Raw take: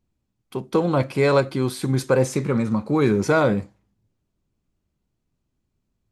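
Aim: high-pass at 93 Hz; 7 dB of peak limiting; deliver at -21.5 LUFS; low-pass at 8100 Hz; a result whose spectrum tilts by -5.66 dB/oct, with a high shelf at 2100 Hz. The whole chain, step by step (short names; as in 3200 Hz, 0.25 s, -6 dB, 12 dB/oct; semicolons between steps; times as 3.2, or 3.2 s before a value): HPF 93 Hz; LPF 8100 Hz; high shelf 2100 Hz +6 dB; gain +1.5 dB; limiter -10.5 dBFS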